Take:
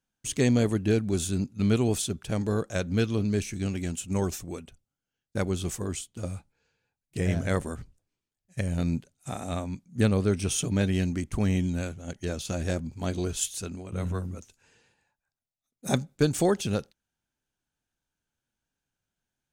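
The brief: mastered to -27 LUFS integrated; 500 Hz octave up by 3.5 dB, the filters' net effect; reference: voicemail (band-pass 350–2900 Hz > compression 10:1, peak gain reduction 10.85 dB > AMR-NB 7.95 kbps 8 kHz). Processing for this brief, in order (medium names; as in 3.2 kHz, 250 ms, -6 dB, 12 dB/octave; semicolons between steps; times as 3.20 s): band-pass 350–2900 Hz; peaking EQ 500 Hz +6 dB; compression 10:1, threshold -26 dBFS; trim +8.5 dB; AMR-NB 7.95 kbps 8 kHz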